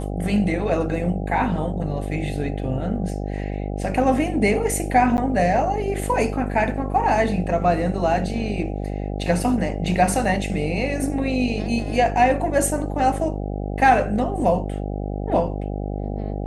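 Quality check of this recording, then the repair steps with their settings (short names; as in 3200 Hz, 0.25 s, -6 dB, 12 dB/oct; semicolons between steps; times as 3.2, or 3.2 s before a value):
buzz 50 Hz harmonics 16 -27 dBFS
5.17–5.18 gap 9.9 ms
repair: de-hum 50 Hz, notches 16; interpolate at 5.17, 9.9 ms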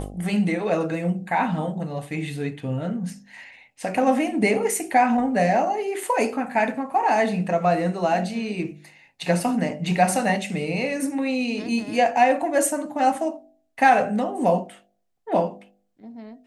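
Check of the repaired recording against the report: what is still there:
none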